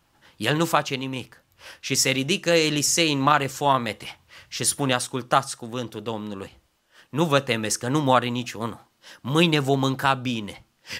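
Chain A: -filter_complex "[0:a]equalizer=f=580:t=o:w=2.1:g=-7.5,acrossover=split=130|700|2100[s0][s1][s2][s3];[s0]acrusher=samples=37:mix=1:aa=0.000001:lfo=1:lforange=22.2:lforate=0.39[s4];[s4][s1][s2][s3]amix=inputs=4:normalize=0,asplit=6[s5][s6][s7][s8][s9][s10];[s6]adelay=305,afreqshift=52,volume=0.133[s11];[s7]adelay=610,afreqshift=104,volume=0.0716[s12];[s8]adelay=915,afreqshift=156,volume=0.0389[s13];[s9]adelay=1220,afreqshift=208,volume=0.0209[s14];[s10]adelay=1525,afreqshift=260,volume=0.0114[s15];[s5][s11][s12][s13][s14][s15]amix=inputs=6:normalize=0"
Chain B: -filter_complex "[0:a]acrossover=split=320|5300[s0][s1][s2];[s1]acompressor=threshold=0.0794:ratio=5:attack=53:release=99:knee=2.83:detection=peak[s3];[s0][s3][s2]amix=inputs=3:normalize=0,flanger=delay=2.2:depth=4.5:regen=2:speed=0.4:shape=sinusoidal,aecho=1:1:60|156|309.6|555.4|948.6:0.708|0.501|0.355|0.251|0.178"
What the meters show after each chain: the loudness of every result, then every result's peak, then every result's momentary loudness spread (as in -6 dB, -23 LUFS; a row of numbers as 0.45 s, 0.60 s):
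-25.5 LUFS, -24.0 LUFS; -6.0 dBFS, -7.5 dBFS; 17 LU, 15 LU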